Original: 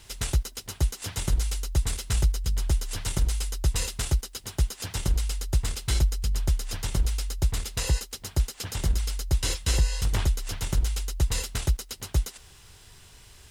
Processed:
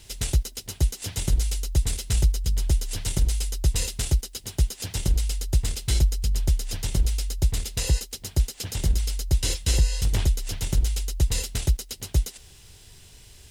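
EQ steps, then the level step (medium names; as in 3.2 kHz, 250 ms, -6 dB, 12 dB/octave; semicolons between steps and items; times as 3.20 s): peaking EQ 1.2 kHz -8.5 dB 1.3 oct; +2.5 dB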